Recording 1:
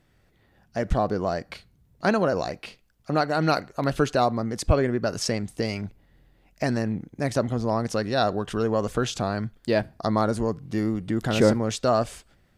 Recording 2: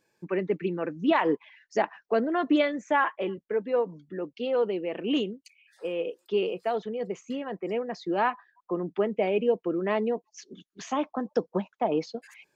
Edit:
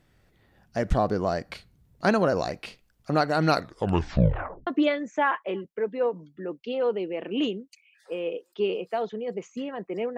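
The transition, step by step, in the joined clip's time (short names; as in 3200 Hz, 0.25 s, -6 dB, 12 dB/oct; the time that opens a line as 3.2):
recording 1
3.54 tape stop 1.13 s
4.67 switch to recording 2 from 2.4 s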